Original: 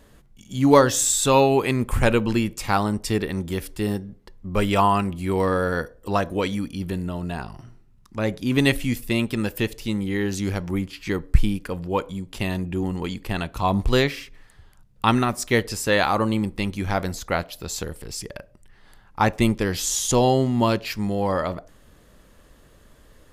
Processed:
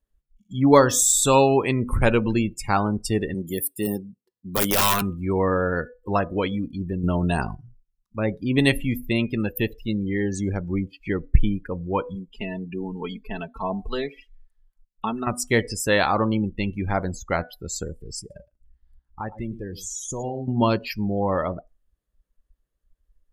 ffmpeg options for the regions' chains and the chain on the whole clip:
ffmpeg -i in.wav -filter_complex "[0:a]asettb=1/sr,asplit=3[link_01][link_02][link_03];[link_01]atrim=end=3.344[link_04];[link_02]atrim=start=3.34:end=5.02,asetpts=PTS-STARTPTS,afade=type=in:duration=0.004:curve=qsin,afade=type=out:start_time=1.676:duration=0.004:curve=qsin,highpass=150,highshelf=frequency=5700:gain=11,aeval=exprs='(mod(5.01*val(0)+1,2)-1)/5.01':channel_layout=same[link_05];[link_03]atrim=start=5.016[link_06];[link_04][link_05]acrossfade=duration=0.004:curve1=hsin:curve2=qsin[link_07];[link_07][link_06]acrossfade=duration=0.004:curve1=qsin:curve2=hsin,asettb=1/sr,asplit=3[link_08][link_09][link_10];[link_08]atrim=end=7.034[link_11];[link_09]atrim=start=7.03:end=7.55,asetpts=PTS-STARTPTS,afade=type=in:duration=0.004:curve=qsin,afade=type=out:start_time=0.516:duration=0.004:curve=qsin,equalizer=frequency=11000:width_type=o:width=2.2:gain=7.5,acontrast=78[link_12];[link_10]atrim=start=7.546[link_13];[link_11][link_12]acrossfade=duration=0.004:curve1=hsin:curve2=qsin[link_14];[link_14][link_13]acrossfade=duration=0.004:curve1=qsin:curve2=hsin,asettb=1/sr,asplit=3[link_15][link_16][link_17];[link_15]atrim=end=12.154[link_18];[link_16]atrim=start=12.15:end=15.27,asetpts=PTS-STARTPTS,afade=type=in:duration=0.004:curve=qsin,afade=type=out:start_time=3.116:duration=0.004:curve=qsin,aecho=1:1:4.6:0.58,atrim=end_sample=137592,acrossover=split=730|6700[link_19][link_20][link_21];[link_19]acompressor=threshold=-22dB:ratio=4[link_22];[link_20]acompressor=threshold=-32dB:ratio=4[link_23];[link_21]acompressor=threshold=-52dB:ratio=4[link_24];[link_22][link_23][link_24]amix=inputs=3:normalize=0,equalizer=frequency=71:width=0.43:gain=-11.5[link_25];[link_17]atrim=start=15.266[link_26];[link_18][link_25]acrossfade=duration=0.004:curve1=hsin:curve2=qsin[link_27];[link_27][link_26]acrossfade=duration=0.004:curve1=qsin:curve2=hsin,asettb=1/sr,asplit=3[link_28][link_29][link_30];[link_28]atrim=end=18.194[link_31];[link_29]atrim=start=18.19:end=20.48,asetpts=PTS-STARTPTS,afade=type=in:duration=0.004:curve=qsin,afade=type=out:start_time=2.286:duration=0.004:curve=qsin,aeval=exprs='val(0)+0.00251*(sin(2*PI*60*n/s)+sin(2*PI*2*60*n/s)/2+sin(2*PI*3*60*n/s)/3+sin(2*PI*4*60*n/s)/4+sin(2*PI*5*60*n/s)/5)':channel_layout=same,acompressor=threshold=-35dB:ratio=2:attack=3.2:release=140:knee=1:detection=peak,aecho=1:1:113:0.266,atrim=end_sample=100989[link_32];[link_30]atrim=start=20.476[link_33];[link_31][link_32]acrossfade=duration=0.004:curve1=hsin:curve2=qsin[link_34];[link_34][link_33]acrossfade=duration=0.004:curve1=qsin:curve2=hsin,highshelf=frequency=11000:gain=10,bandreject=frequency=246.4:width_type=h:width=4,bandreject=frequency=492.8:width_type=h:width=4,bandreject=frequency=739.2:width_type=h:width=4,bandreject=frequency=985.6:width_type=h:width=4,bandreject=frequency=1232:width_type=h:width=4,bandreject=frequency=1478.4:width_type=h:width=4,bandreject=frequency=1724.8:width_type=h:width=4,bandreject=frequency=1971.2:width_type=h:width=4,bandreject=frequency=2217.6:width_type=h:width=4,bandreject=frequency=2464:width_type=h:width=4,bandreject=frequency=2710.4:width_type=h:width=4,bandreject=frequency=2956.8:width_type=h:width=4,bandreject=frequency=3203.2:width_type=h:width=4,bandreject=frequency=3449.6:width_type=h:width=4,bandreject=frequency=3696:width_type=h:width=4,bandreject=frequency=3942.4:width_type=h:width=4,bandreject=frequency=4188.8:width_type=h:width=4,bandreject=frequency=4435.2:width_type=h:width=4,bandreject=frequency=4681.6:width_type=h:width=4,bandreject=frequency=4928:width_type=h:width=4,bandreject=frequency=5174.4:width_type=h:width=4,bandreject=frequency=5420.8:width_type=h:width=4,bandreject=frequency=5667.2:width_type=h:width=4,bandreject=frequency=5913.6:width_type=h:width=4,bandreject=frequency=6160:width_type=h:width=4,bandreject=frequency=6406.4:width_type=h:width=4,bandreject=frequency=6652.8:width_type=h:width=4,bandreject=frequency=6899.2:width_type=h:width=4,bandreject=frequency=7145.6:width_type=h:width=4,bandreject=frequency=7392:width_type=h:width=4,bandreject=frequency=7638.4:width_type=h:width=4,bandreject=frequency=7884.8:width_type=h:width=4,bandreject=frequency=8131.2:width_type=h:width=4,bandreject=frequency=8377.6:width_type=h:width=4,bandreject=frequency=8624:width_type=h:width=4,bandreject=frequency=8870.4:width_type=h:width=4,bandreject=frequency=9116.8:width_type=h:width=4,afftdn=noise_reduction=33:noise_floor=-31" out.wav

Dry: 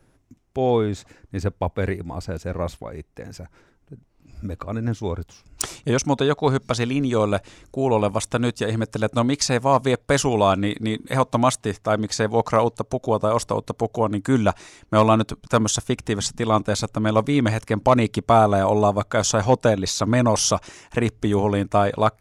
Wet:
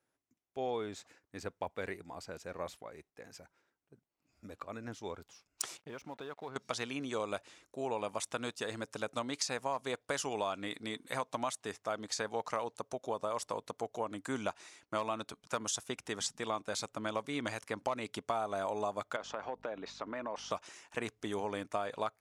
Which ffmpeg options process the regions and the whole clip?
ffmpeg -i in.wav -filter_complex "[0:a]asettb=1/sr,asplit=3[link_01][link_02][link_03];[link_01]atrim=end=5.774[link_04];[link_02]atrim=start=5.77:end=6.56,asetpts=PTS-STARTPTS,afade=type=in:duration=0.004:curve=qsin,afade=type=out:start_time=0.786:duration=0.004:curve=qsin,lowpass=2700,acompressor=threshold=-26dB:ratio=4:attack=3.2:release=140:knee=1:detection=peak,aeval=exprs='sgn(val(0))*max(abs(val(0))-0.00299,0)':channel_layout=same[link_05];[link_03]atrim=start=6.556[link_06];[link_04][link_05]acrossfade=duration=0.004:curve1=hsin:curve2=qsin[link_07];[link_07][link_06]acrossfade=duration=0.004:curve1=qsin:curve2=hsin,asettb=1/sr,asplit=3[link_08][link_09][link_10];[link_08]atrim=end=19.164[link_11];[link_09]atrim=start=19.16:end=20.51,asetpts=PTS-STARTPTS,afade=type=in:duration=0.004:curve=qsin,afade=type=out:start_time=1.346:duration=0.004:curve=qsin,highpass=240,lowpass=2100,aeval=exprs='val(0)+0.0141*(sin(2*PI*50*n/s)+sin(2*PI*2*50*n/s)/2+sin(2*PI*3*50*n/s)/3+sin(2*PI*4*50*n/s)/4+sin(2*PI*5*50*n/s)/5)':channel_layout=same,acompressor=threshold=-21dB:ratio=6:attack=3.2:release=140:knee=1:detection=peak[link_12];[link_10]atrim=start=20.506[link_13];[link_11][link_12]acrossfade=duration=0.004:curve1=hsin:curve2=qsin[link_14];[link_14][link_13]acrossfade=duration=0.004:curve1=qsin:curve2=hsin,highpass=frequency=690:poles=1,agate=range=-8dB:threshold=-53dB:ratio=16:detection=peak,acompressor=threshold=-22dB:ratio=6,volume=-9dB" out.wav

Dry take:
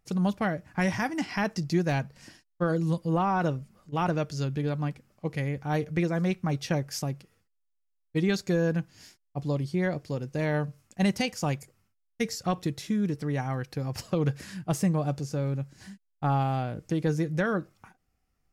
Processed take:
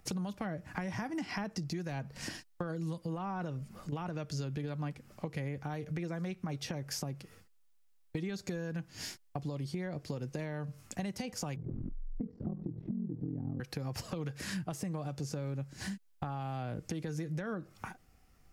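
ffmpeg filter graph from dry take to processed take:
ffmpeg -i in.wav -filter_complex "[0:a]asettb=1/sr,asplit=3[link_01][link_02][link_03];[link_01]atrim=end=11.564[link_04];[link_02]atrim=start=11.56:end=13.6,asetpts=PTS-STARTPTS,afade=type=in:duration=0.004:curve=qsin,afade=type=out:start_time=2.036:duration=0.004:curve=qsin,aeval=exprs='val(0)+0.5*0.02*sgn(val(0))':channel_layout=same,lowpass=frequency=260:width_type=q:width=2.2,aeval=exprs='val(0)*sin(2*PI*21*n/s)':channel_layout=same[link_05];[link_03]atrim=start=13.596[link_06];[link_04][link_05]acrossfade=duration=0.004:curve1=hsin:curve2=qsin[link_07];[link_07][link_06]acrossfade=duration=0.004:curve1=qsin:curve2=hsin,acrossover=split=230|1200[link_08][link_09][link_10];[link_08]acompressor=threshold=-32dB:ratio=4[link_11];[link_09]acompressor=threshold=-32dB:ratio=4[link_12];[link_10]acompressor=threshold=-40dB:ratio=4[link_13];[link_11][link_12][link_13]amix=inputs=3:normalize=0,alimiter=level_in=3dB:limit=-24dB:level=0:latency=1:release=277,volume=-3dB,acompressor=threshold=-47dB:ratio=5,volume=11dB" out.wav

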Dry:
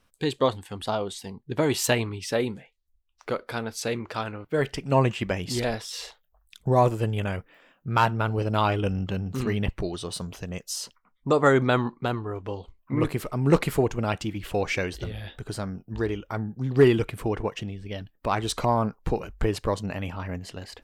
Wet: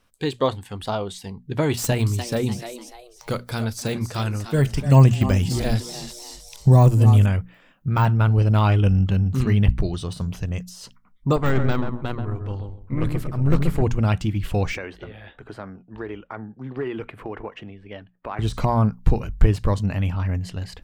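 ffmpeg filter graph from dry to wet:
ffmpeg -i in.wav -filter_complex "[0:a]asettb=1/sr,asplit=3[link_01][link_02][link_03];[link_01]atrim=end=1.774[link_04];[link_02]atrim=start=1.77:end=7.26,asetpts=PTS-STARTPTS,afade=type=in:duration=0.004:curve=qsin,afade=type=out:start_time=5.486:duration=0.004:curve=qsin,bass=frequency=250:gain=4,treble=frequency=4000:gain=15,asplit=4[link_05][link_06][link_07][link_08];[link_06]adelay=296,afreqshift=120,volume=-12.5dB[link_09];[link_07]adelay=592,afreqshift=240,volume=-22.1dB[link_10];[link_08]adelay=888,afreqshift=360,volume=-31.8dB[link_11];[link_05][link_09][link_10][link_11]amix=inputs=4:normalize=0,atrim=end_sample=242109[link_12];[link_03]atrim=start=7.256[link_13];[link_04][link_12]acrossfade=duration=0.004:curve1=hsin:curve2=qsin[link_14];[link_14][link_13]acrossfade=duration=0.004:curve1=qsin:curve2=hsin,asettb=1/sr,asplit=3[link_15][link_16][link_17];[link_15]atrim=end=11.364[link_18];[link_16]atrim=start=11.36:end=13.82,asetpts=PTS-STARTPTS,afade=type=in:duration=0.004:curve=qsin,afade=type=out:start_time=2.456:duration=0.004:curve=qsin,aeval=exprs='(tanh(6.31*val(0)+0.6)-tanh(0.6))/6.31':channel_layout=same,asplit=2[link_19][link_20];[link_20]adelay=132,lowpass=frequency=890:poles=1,volume=-4.5dB,asplit=2[link_21][link_22];[link_22]adelay=132,lowpass=frequency=890:poles=1,volume=0.26,asplit=2[link_23][link_24];[link_24]adelay=132,lowpass=frequency=890:poles=1,volume=0.26,asplit=2[link_25][link_26];[link_26]adelay=132,lowpass=frequency=890:poles=1,volume=0.26[link_27];[link_19][link_21][link_23][link_25][link_27]amix=inputs=5:normalize=0,atrim=end_sample=108486,tremolo=f=230:d=0.4[link_28];[link_17]atrim=start=13.816[link_29];[link_18][link_28]acrossfade=duration=0.004:curve1=hsin:curve2=qsin[link_30];[link_30][link_29]acrossfade=duration=0.004:curve1=qsin:curve2=hsin,asettb=1/sr,asplit=3[link_31][link_32][link_33];[link_31]atrim=end=14.774[link_34];[link_32]atrim=start=14.77:end=18.39,asetpts=PTS-STARTPTS,afade=type=in:duration=0.004:curve=qsin,afade=type=out:start_time=3.616:duration=0.004:curve=qsin,acrossover=split=290 2700:gain=0.0891 1 0.0891[link_35][link_36][link_37];[link_35][link_36][link_37]amix=inputs=3:normalize=0,acompressor=threshold=-29dB:ratio=2.5:attack=3.2:release=140:knee=1:detection=peak[link_38];[link_33]atrim=start=18.386[link_39];[link_34][link_38]acrossfade=duration=0.004:curve1=hsin:curve2=qsin[link_40];[link_40][link_39]acrossfade=duration=0.004:curve1=qsin:curve2=hsin,deesser=0.85,bandreject=frequency=60:width_type=h:width=6,bandreject=frequency=120:width_type=h:width=6,bandreject=frequency=180:width_type=h:width=6,bandreject=frequency=240:width_type=h:width=6,asubboost=boost=3.5:cutoff=200,volume=2dB" out.wav

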